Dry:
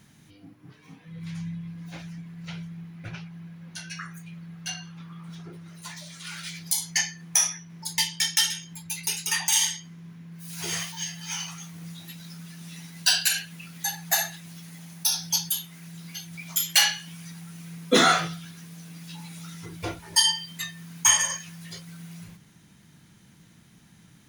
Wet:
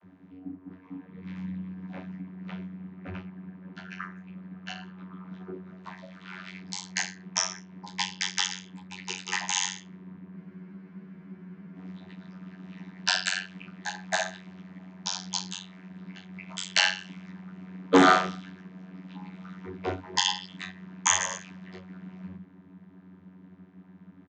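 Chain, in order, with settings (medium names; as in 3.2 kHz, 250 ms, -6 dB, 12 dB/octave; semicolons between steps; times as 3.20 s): level-controlled noise filter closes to 1.5 kHz, open at -21.5 dBFS; comb 3.1 ms, depth 33%; vocoder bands 32, saw 92.7 Hz; spectral freeze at 10.38 s, 1.38 s; transformer saturation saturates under 750 Hz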